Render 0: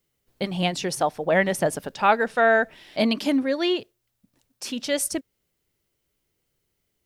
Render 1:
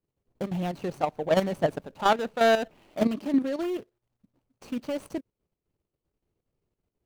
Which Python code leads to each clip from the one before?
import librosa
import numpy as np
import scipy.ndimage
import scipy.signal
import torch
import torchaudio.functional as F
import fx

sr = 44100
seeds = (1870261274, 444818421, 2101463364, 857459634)

y = scipy.ndimage.median_filter(x, 25, mode='constant')
y = fx.level_steps(y, sr, step_db=10)
y = y * 10.0 ** (1.5 / 20.0)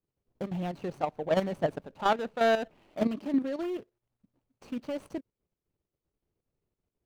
y = fx.high_shelf(x, sr, hz=5600.0, db=-7.0)
y = y * 10.0 ** (-3.5 / 20.0)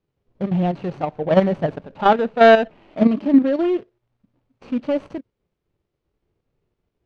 y = scipy.signal.sosfilt(scipy.signal.butter(2, 3700.0, 'lowpass', fs=sr, output='sos'), x)
y = fx.hpss(y, sr, part='harmonic', gain_db=9)
y = y * 10.0 ** (5.0 / 20.0)